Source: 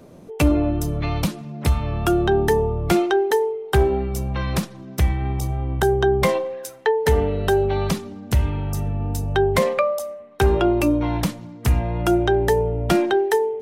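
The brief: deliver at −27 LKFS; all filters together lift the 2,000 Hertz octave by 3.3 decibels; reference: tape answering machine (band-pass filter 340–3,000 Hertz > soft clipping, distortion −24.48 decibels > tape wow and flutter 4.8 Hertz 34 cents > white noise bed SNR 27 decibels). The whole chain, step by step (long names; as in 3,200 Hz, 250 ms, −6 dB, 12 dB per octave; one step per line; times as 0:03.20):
band-pass filter 340–3,000 Hz
parametric band 2,000 Hz +5 dB
soft clipping −8.5 dBFS
tape wow and flutter 4.8 Hz 34 cents
white noise bed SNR 27 dB
level −3 dB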